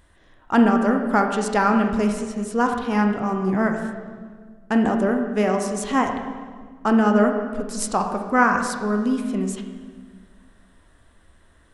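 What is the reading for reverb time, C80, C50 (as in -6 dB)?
1.6 s, 7.5 dB, 5.5 dB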